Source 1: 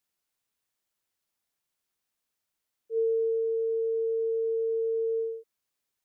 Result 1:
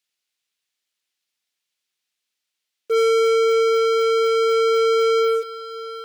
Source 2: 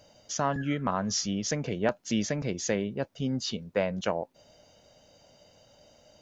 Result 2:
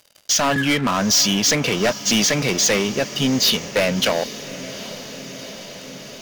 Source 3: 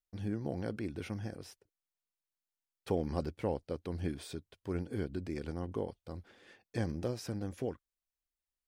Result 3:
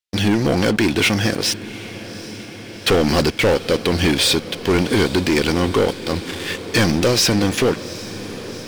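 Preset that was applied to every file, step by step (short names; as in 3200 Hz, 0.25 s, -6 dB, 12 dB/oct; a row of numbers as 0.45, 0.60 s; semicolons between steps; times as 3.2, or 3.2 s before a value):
weighting filter D; sample leveller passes 5; diffused feedback echo 0.786 s, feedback 74%, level -15.5 dB; match loudness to -18 LUFS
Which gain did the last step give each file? +7.0, -4.0, +8.0 dB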